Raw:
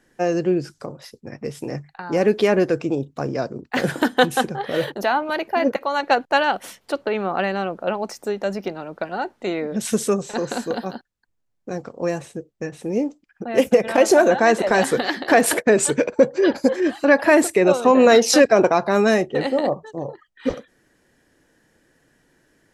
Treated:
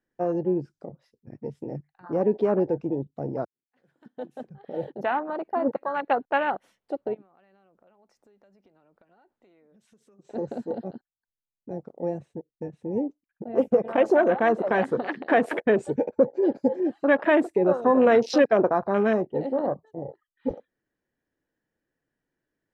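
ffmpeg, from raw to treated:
ffmpeg -i in.wav -filter_complex "[0:a]asplit=3[link_01][link_02][link_03];[link_01]afade=type=out:start_time=7.13:duration=0.02[link_04];[link_02]acompressor=threshold=-35dB:ratio=8:attack=3.2:release=140:knee=1:detection=peak,afade=type=in:start_time=7.13:duration=0.02,afade=type=out:start_time=10.24:duration=0.02[link_05];[link_03]afade=type=in:start_time=10.24:duration=0.02[link_06];[link_04][link_05][link_06]amix=inputs=3:normalize=0,asplit=2[link_07][link_08];[link_07]atrim=end=3.45,asetpts=PTS-STARTPTS,afade=type=out:start_time=3.446:duration=0.004:curve=hsin[link_09];[link_08]atrim=start=3.45,asetpts=PTS-STARTPTS,afade=type=in:duration=1.58:curve=qua[link_10];[link_09][link_10]concat=n=2:v=0:a=1,afwtdn=0.0708,lowpass=frequency=2600:poles=1,volume=-5dB" out.wav

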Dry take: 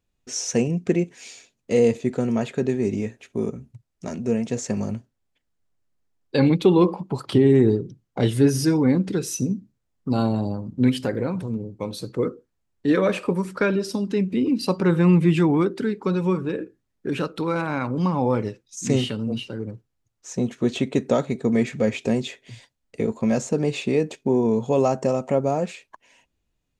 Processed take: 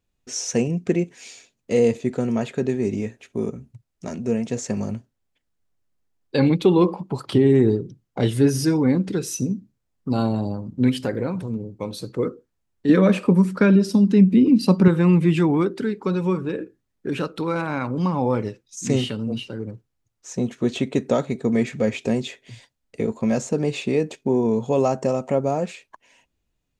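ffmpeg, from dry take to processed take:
ffmpeg -i in.wav -filter_complex "[0:a]asettb=1/sr,asplit=3[link_01][link_02][link_03];[link_01]atrim=end=12.894[link_04];[link_02]atrim=start=12.89:end=14.88,asetpts=PTS-STARTPTS,afade=type=in:duration=0.004:curve=qsin,afade=type=out:start_time=1.986:duration=0.004:curve=qsin,equalizer=frequency=200:width=1.5:gain=10.5[link_05];[link_03]atrim=start=14.876[link_06];[link_04][link_05]acrossfade=duration=0.004:curve1=hsin:curve2=qsin[link_07];[link_07][link_06]acrossfade=duration=0.004:curve1=qsin:curve2=hsin" out.wav

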